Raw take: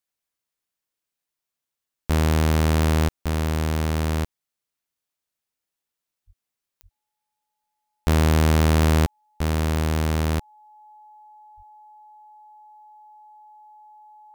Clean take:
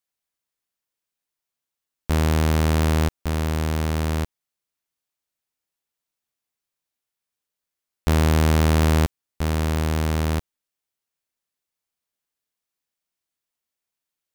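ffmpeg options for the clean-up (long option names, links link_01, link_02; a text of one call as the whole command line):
ffmpeg -i in.wav -filter_complex "[0:a]adeclick=threshold=4,bandreject=frequency=850:width=30,asplit=3[link_01][link_02][link_03];[link_01]afade=type=out:start_time=6.26:duration=0.02[link_04];[link_02]highpass=frequency=140:width=0.5412,highpass=frequency=140:width=1.3066,afade=type=in:start_time=6.26:duration=0.02,afade=type=out:start_time=6.38:duration=0.02[link_05];[link_03]afade=type=in:start_time=6.38:duration=0.02[link_06];[link_04][link_05][link_06]amix=inputs=3:normalize=0,asplit=3[link_07][link_08][link_09];[link_07]afade=type=out:start_time=6.82:duration=0.02[link_10];[link_08]highpass=frequency=140:width=0.5412,highpass=frequency=140:width=1.3066,afade=type=in:start_time=6.82:duration=0.02,afade=type=out:start_time=6.94:duration=0.02[link_11];[link_09]afade=type=in:start_time=6.94:duration=0.02[link_12];[link_10][link_11][link_12]amix=inputs=3:normalize=0,asplit=3[link_13][link_14][link_15];[link_13]afade=type=out:start_time=11.56:duration=0.02[link_16];[link_14]highpass=frequency=140:width=0.5412,highpass=frequency=140:width=1.3066,afade=type=in:start_time=11.56:duration=0.02,afade=type=out:start_time=11.68:duration=0.02[link_17];[link_15]afade=type=in:start_time=11.68:duration=0.02[link_18];[link_16][link_17][link_18]amix=inputs=3:normalize=0" out.wav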